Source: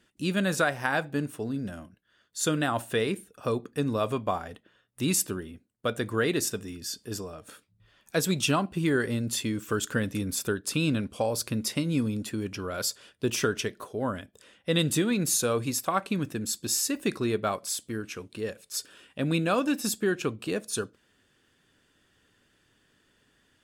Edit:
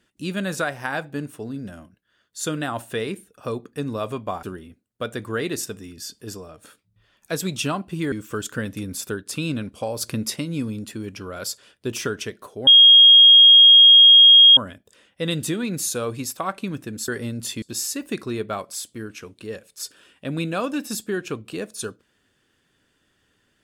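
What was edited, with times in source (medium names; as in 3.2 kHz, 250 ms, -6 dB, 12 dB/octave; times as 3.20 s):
4.43–5.27 s: delete
8.96–9.50 s: move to 16.56 s
11.39–11.74 s: gain +3.5 dB
14.05 s: add tone 3.26 kHz -6.5 dBFS 1.90 s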